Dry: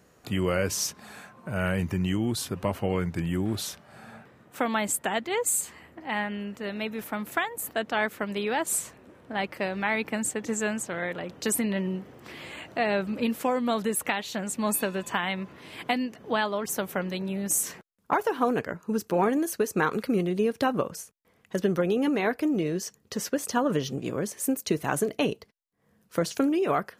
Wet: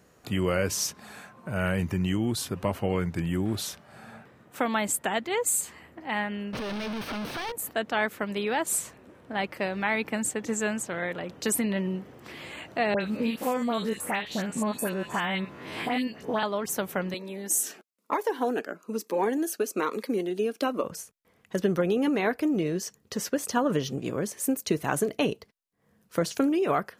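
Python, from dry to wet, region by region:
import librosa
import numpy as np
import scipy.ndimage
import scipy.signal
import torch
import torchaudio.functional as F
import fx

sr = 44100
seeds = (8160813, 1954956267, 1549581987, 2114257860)

y = fx.chain(x, sr, fx.clip_1bit(),
    fx.savgol(points=15),
    fx.notch(hz=1900.0, q=13.0), at=(6.53, 7.52))
y = fx.chain(y, sr, fx.spec_steps(hold_ms=50),
    fx.dispersion(late='highs', ms=78.0, hz=2100.0),
    fx.band_squash(depth_pct=70), at=(12.94, 16.43))
y = fx.chain(y, sr, fx.highpass(hz=250.0, slope=24),
    fx.notch_cascade(direction='falling', hz=1.1), at=(17.14, 20.84))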